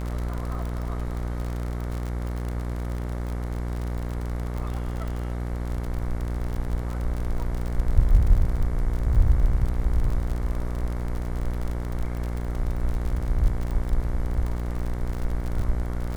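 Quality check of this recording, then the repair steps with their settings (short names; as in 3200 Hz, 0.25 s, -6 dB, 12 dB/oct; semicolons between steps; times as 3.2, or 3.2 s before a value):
buzz 60 Hz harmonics 38 -29 dBFS
crackle 47/s -29 dBFS
5.08 pop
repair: de-click; de-hum 60 Hz, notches 38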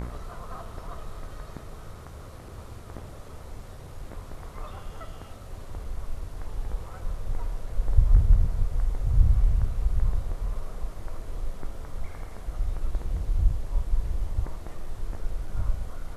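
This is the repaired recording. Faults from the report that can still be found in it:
none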